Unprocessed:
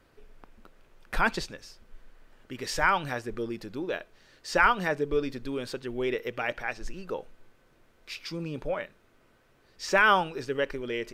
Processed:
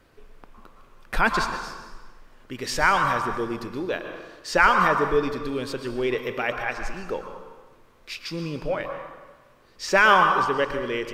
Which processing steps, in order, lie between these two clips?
on a send: parametric band 1,100 Hz +14 dB 0.38 octaves + convolution reverb RT60 1.3 s, pre-delay 103 ms, DRR 3 dB
on the sum: level +4 dB

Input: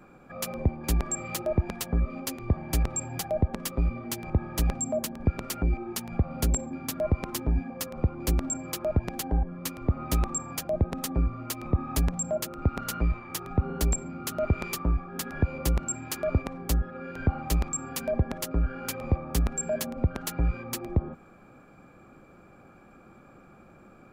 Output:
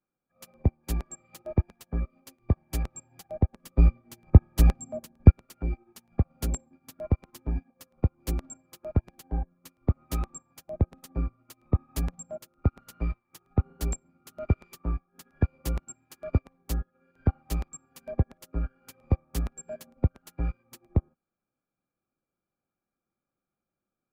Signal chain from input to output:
0:03.62–0:05.35: low-shelf EQ 220 Hz +5 dB
expander for the loud parts 2.5 to 1, over −44 dBFS
level +8 dB

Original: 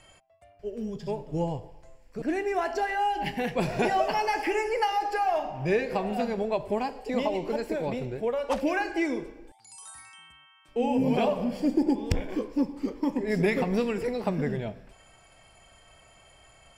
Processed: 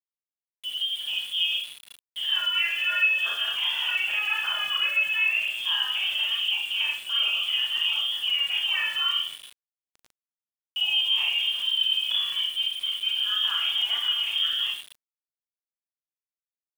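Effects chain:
brickwall limiter −22 dBFS, peak gain reduction 9 dB
voice inversion scrambler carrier 3,400 Hz
high-pass filter 1,000 Hz 12 dB per octave
four-comb reverb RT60 0.35 s, combs from 27 ms, DRR −2.5 dB
centre clipping without the shift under −38.5 dBFS

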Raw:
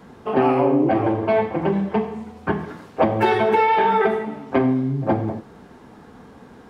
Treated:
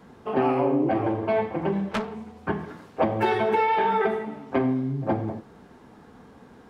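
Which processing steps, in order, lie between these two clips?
0:01.91–0:02.38: phase distortion by the signal itself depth 0.97 ms
level −5 dB

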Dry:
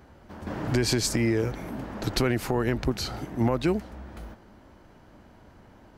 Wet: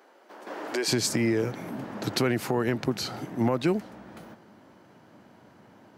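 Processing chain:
high-pass filter 350 Hz 24 dB per octave, from 0:00.88 120 Hz

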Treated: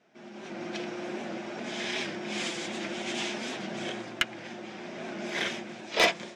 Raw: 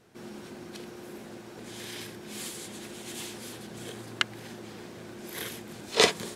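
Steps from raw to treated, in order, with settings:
flanger 0.58 Hz, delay 4.6 ms, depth 1.4 ms, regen −46%
automatic gain control gain up to 13 dB
loudspeaker in its box 220–5,800 Hz, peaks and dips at 440 Hz −8 dB, 650 Hz +6 dB, 1,100 Hz −3 dB, 2,300 Hz +4 dB, 4,300 Hz −7 dB
soft clipping −13 dBFS, distortion −12 dB
wow of a warped record 78 rpm, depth 100 cents

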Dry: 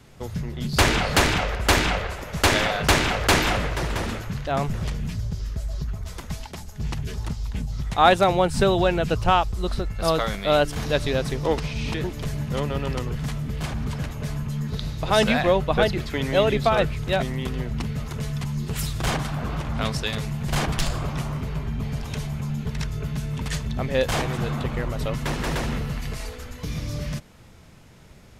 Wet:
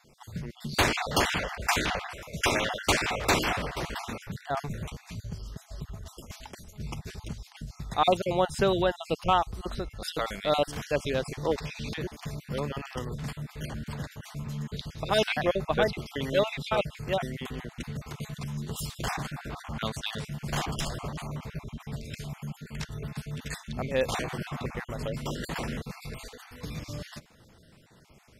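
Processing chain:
time-frequency cells dropped at random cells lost 34%
low-shelf EQ 100 Hz −9 dB
level −4 dB

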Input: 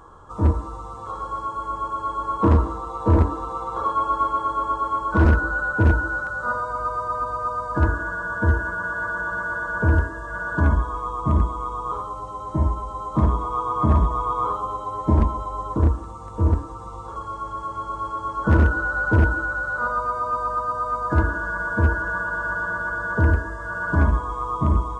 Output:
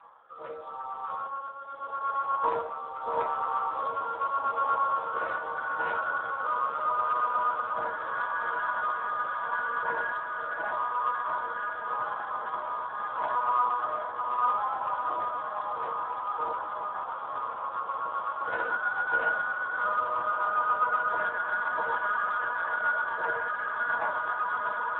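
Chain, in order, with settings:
Butterworth high-pass 580 Hz 36 dB per octave
0:20.37–0:22.63: parametric band 2,700 Hz +1 dB → −6 dB 0.43 octaves
rotating-speaker cabinet horn 0.8 Hz, later 7.5 Hz, at 0:16.00
feedback delay with all-pass diffusion 1,689 ms, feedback 66%, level −5 dB
convolution reverb RT60 0.45 s, pre-delay 6 ms, DRR 0 dB
level −1.5 dB
Speex 8 kbit/s 8,000 Hz

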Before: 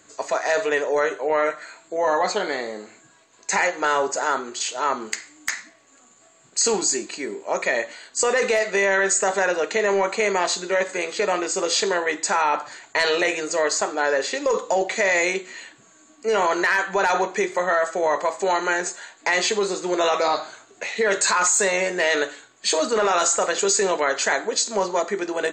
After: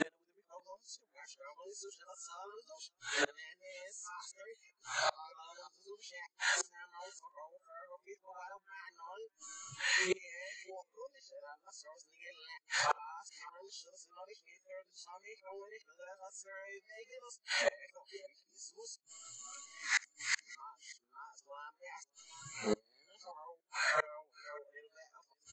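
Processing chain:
played backwards from end to start
gate with flip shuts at −26 dBFS, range −35 dB
low-pass filter 7,300 Hz 24 dB per octave
on a send: single-tap delay 577 ms −18.5 dB
on the sum: noise reduction from a noise print of the clip's start 24 dB
level +7 dB

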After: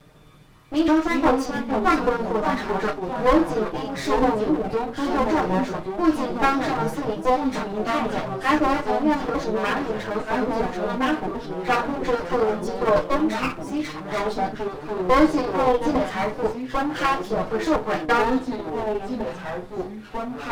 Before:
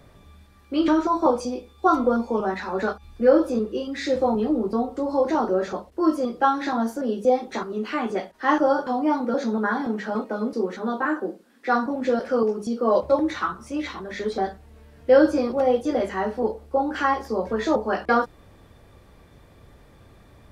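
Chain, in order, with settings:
lower of the sound and its delayed copy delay 6.5 ms
delay with pitch and tempo change per echo 232 ms, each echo −3 semitones, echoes 3, each echo −6 dB
level +1.5 dB

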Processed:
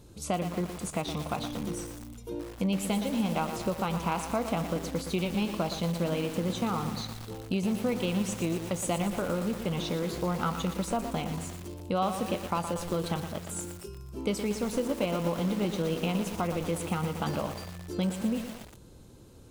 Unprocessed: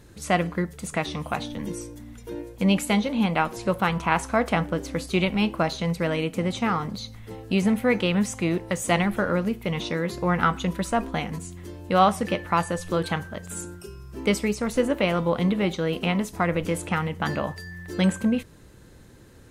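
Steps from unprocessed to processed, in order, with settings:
parametric band 1,800 Hz −15 dB 0.49 octaves
downward compressor 3 to 1, threshold −25 dBFS, peak gain reduction 8.5 dB
feedback echo at a low word length 118 ms, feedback 80%, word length 6 bits, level −7.5 dB
level −2 dB

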